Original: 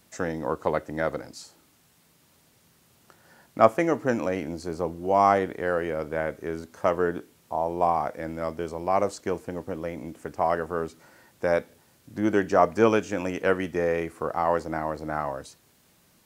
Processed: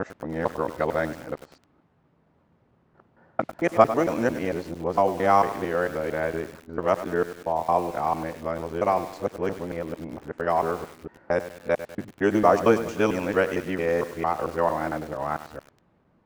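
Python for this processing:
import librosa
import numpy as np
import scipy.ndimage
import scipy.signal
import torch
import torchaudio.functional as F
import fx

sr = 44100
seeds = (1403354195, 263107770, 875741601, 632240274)

y = fx.local_reverse(x, sr, ms=226.0)
y = fx.env_lowpass(y, sr, base_hz=1100.0, full_db=-19.0)
y = fx.echo_crushed(y, sr, ms=99, feedback_pct=55, bits=6, wet_db=-12)
y = y * 10.0 ** (1.0 / 20.0)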